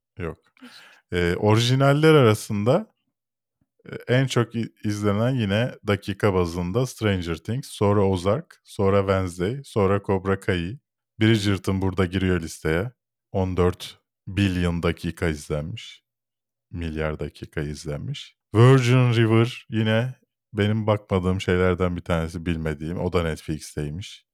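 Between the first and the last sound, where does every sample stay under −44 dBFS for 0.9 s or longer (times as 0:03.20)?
0:02.85–0:03.86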